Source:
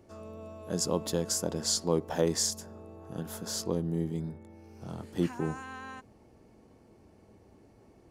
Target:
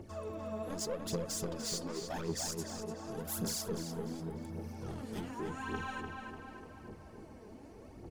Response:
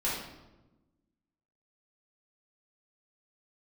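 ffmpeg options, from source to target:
-filter_complex "[0:a]asettb=1/sr,asplit=3[s0][s1][s2];[s0]atrim=end=3.194[s3];[s1]atrim=start=3.19:end=4.73,asetpts=PTS-STARTPTS,afade=t=in:d=0.004:c=qsin,afade=t=out:st=1.536:d=0.004:c=qsin,highshelf=f=7200:g=10[s4];[s2]atrim=start=4.726[s5];[s3][s4]acrossfade=d=0.004:c1=hsin:c2=qsin[s6];[s6][s5]acrossfade=d=0.004:c1=qsin:c2=hsin,acompressor=threshold=0.0158:ratio=6,asoftclip=type=tanh:threshold=0.0112,aphaser=in_gain=1:out_gain=1:delay=4.9:decay=0.66:speed=0.87:type=triangular,asplit=2[s7][s8];[s8]adelay=296,lowpass=f=3900:p=1,volume=0.596,asplit=2[s9][s10];[s10]adelay=296,lowpass=f=3900:p=1,volume=0.55,asplit=2[s11][s12];[s12]adelay=296,lowpass=f=3900:p=1,volume=0.55,asplit=2[s13][s14];[s14]adelay=296,lowpass=f=3900:p=1,volume=0.55,asplit=2[s15][s16];[s16]adelay=296,lowpass=f=3900:p=1,volume=0.55,asplit=2[s17][s18];[s18]adelay=296,lowpass=f=3900:p=1,volume=0.55,asplit=2[s19][s20];[s20]adelay=296,lowpass=f=3900:p=1,volume=0.55[s21];[s9][s11][s13][s15][s17][s19][s21]amix=inputs=7:normalize=0[s22];[s7][s22]amix=inputs=2:normalize=0,volume=1.33"

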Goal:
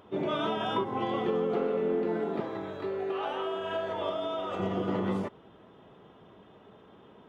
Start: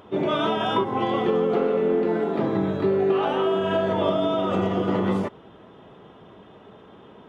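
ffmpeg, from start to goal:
-filter_complex "[0:a]asettb=1/sr,asplit=3[s0][s1][s2];[s0]atrim=end=2.404[s3];[s1]atrim=start=2.4:end=4.6,asetpts=PTS-STARTPTS,afade=t=in:d=0.004:c=qsin,afade=t=out:st=2.196:d=0.004:c=qsin,equalizer=f=170:w=0.74:g=-13.5[s4];[s2]atrim=start=4.596[s5];[s3][s4]acrossfade=d=0.004:c1=hsin:c2=qsin[s6];[s6][s5]acrossfade=d=0.004:c1=qsin:c2=hsin,volume=0.447"

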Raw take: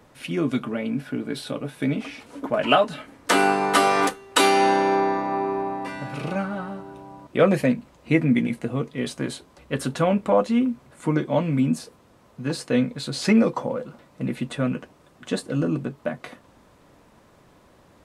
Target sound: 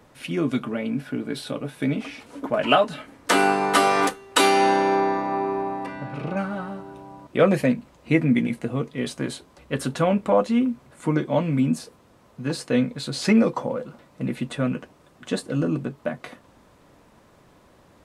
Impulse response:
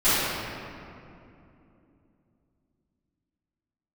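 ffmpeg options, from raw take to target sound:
-filter_complex "[0:a]asettb=1/sr,asplit=3[s0][s1][s2];[s0]atrim=end=5.864[s3];[s1]atrim=start=5.86:end=6.37,asetpts=PTS-STARTPTS,afade=t=in:d=0.004:c=qsin,afade=t=out:st=0.506:d=0.004:c=qsin,lowpass=f=1700:p=1[s4];[s2]atrim=start=6.366[s5];[s3][s4]acrossfade=d=0.004:c1=hsin:c2=qsin[s6];[s6][s5]acrossfade=d=0.004:c1=qsin:c2=hsin"

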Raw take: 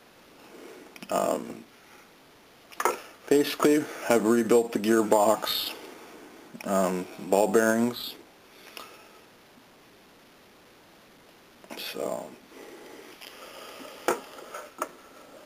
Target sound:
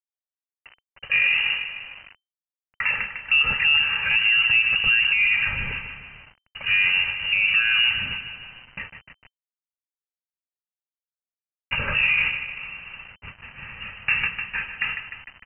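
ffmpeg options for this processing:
-filter_complex "[0:a]aeval=exprs='val(0)+0.5*0.02*sgn(val(0))':c=same,agate=range=0.0158:threshold=0.0178:ratio=16:detection=peak,equalizer=f=2400:t=o:w=0.29:g=-7.5,aecho=1:1:2.7:0.54,aecho=1:1:151|302|453|604|755|906:0.266|0.146|0.0805|0.0443|0.0243|0.0134,acrossover=split=110[s0][s1];[s1]dynaudnorm=f=300:g=7:m=5.01[s2];[s0][s2]amix=inputs=2:normalize=0,alimiter=limit=0.282:level=0:latency=1:release=28,aresample=16000,acrusher=bits=6:mix=0:aa=0.000001,aresample=44100,lowpass=f=2600:t=q:w=0.5098,lowpass=f=2600:t=q:w=0.6013,lowpass=f=2600:t=q:w=0.9,lowpass=f=2600:t=q:w=2.563,afreqshift=-3100,asubboost=boost=8:cutoff=140"

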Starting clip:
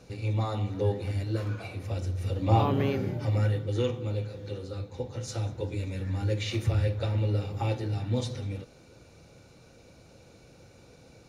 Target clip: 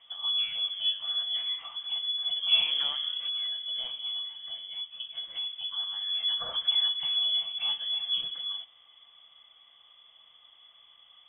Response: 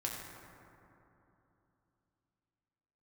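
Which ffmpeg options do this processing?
-filter_complex "[0:a]equalizer=f=630:w=0.72:g=-12,asettb=1/sr,asplit=3[s0][s1][s2];[s0]atrim=end=3.244[s3];[s1]atrim=start=3.24:end=5.64,asetpts=PTS-STARTPTS,afade=t=in:d=0.004:c=qsin,afade=t=out:st=2.396:d=0.004:c=qsin,acompressor=threshold=0.0282:ratio=6[s4];[s2]atrim=start=5.636[s5];[s3][s4]acrossfade=d=0.004:c1=hsin:c2=qsin[s6];[s6][s5]acrossfade=d=0.004:c1=qsin:c2=hsin,lowpass=f=3000:t=q:w=0.5098,lowpass=f=3000:t=q:w=0.6013,lowpass=f=3000:t=q:w=0.9,lowpass=f=3000:t=q:w=2.563,afreqshift=-3500"

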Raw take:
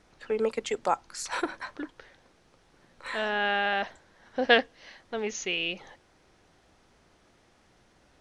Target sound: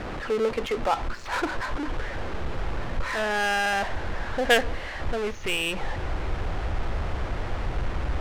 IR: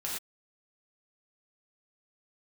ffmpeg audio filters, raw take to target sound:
-af "aeval=exprs='val(0)+0.5*0.0531*sgn(val(0))':c=same,adynamicsmooth=sensitivity=3:basefreq=760,asubboost=boost=6:cutoff=85"

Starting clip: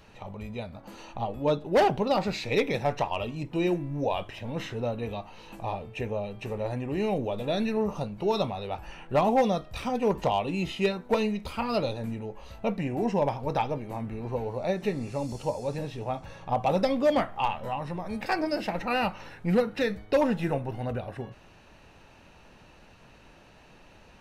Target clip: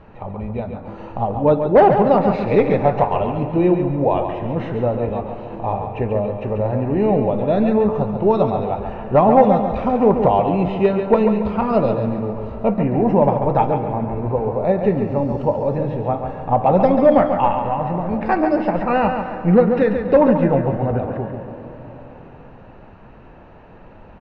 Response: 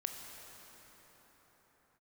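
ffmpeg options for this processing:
-filter_complex "[0:a]lowpass=1300,aecho=1:1:139|278|417|556|695:0.447|0.174|0.0679|0.0265|0.0103,asplit=2[s0][s1];[1:a]atrim=start_sample=2205[s2];[s1][s2]afir=irnorm=-1:irlink=0,volume=0.562[s3];[s0][s3]amix=inputs=2:normalize=0,volume=2.37"

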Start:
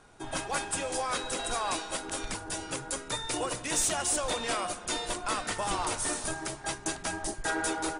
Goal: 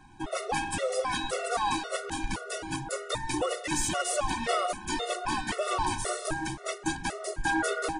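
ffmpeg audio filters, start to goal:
-af "aemphasis=mode=reproduction:type=cd,acontrast=55,afftfilt=real='re*gt(sin(2*PI*1.9*pts/sr)*(1-2*mod(floor(b*sr/1024/370),2)),0)':imag='im*gt(sin(2*PI*1.9*pts/sr)*(1-2*mod(floor(b*sr/1024/370),2)),0)':win_size=1024:overlap=0.75"

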